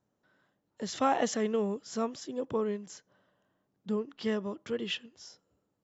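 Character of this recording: noise floor -80 dBFS; spectral tilt -4.5 dB/oct

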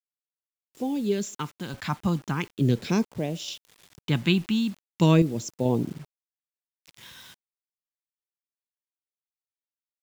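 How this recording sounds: random-step tremolo 2.3 Hz, depth 70%; phasing stages 2, 0.39 Hz, lowest notch 450–1300 Hz; a quantiser's noise floor 10-bit, dither none

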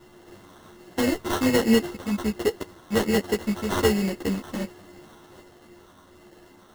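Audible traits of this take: a buzz of ramps at a fixed pitch in blocks of 16 samples; phasing stages 4, 1.3 Hz, lowest notch 640–1600 Hz; aliases and images of a low sample rate 2400 Hz, jitter 0%; a shimmering, thickened sound

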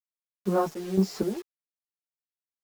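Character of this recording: random-step tremolo 4.1 Hz, depth 85%; a quantiser's noise floor 8-bit, dither none; a shimmering, thickened sound

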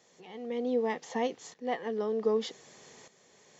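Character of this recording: tremolo saw up 0.65 Hz, depth 75%

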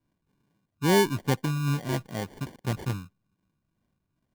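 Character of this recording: phasing stages 4, 2.4 Hz, lowest notch 470–1400 Hz; aliases and images of a low sample rate 1300 Hz, jitter 0%

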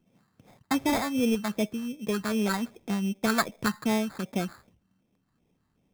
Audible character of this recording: phasing stages 4, 2.6 Hz, lowest notch 480–1600 Hz; aliases and images of a low sample rate 2900 Hz, jitter 0%

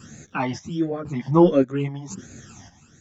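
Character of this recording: phasing stages 12, 1.4 Hz, lowest notch 420–1000 Hz; chopped level 0.95 Hz, depth 65%, duty 55%; a shimmering, thickened sound

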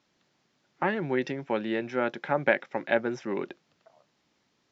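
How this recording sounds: noise floor -73 dBFS; spectral tilt -4.0 dB/oct

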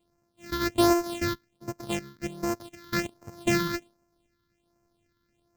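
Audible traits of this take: a buzz of ramps at a fixed pitch in blocks of 128 samples; phasing stages 6, 1.3 Hz, lowest notch 670–3400 Hz

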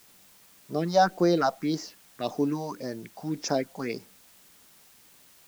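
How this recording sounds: phasing stages 4, 1.8 Hz, lowest notch 320–2900 Hz; a quantiser's noise floor 10-bit, dither triangular

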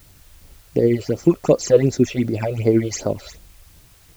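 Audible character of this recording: phasing stages 8, 2.7 Hz, lowest notch 240–2700 Hz; tremolo triangle 12 Hz, depth 40%; a quantiser's noise floor 10-bit, dither triangular

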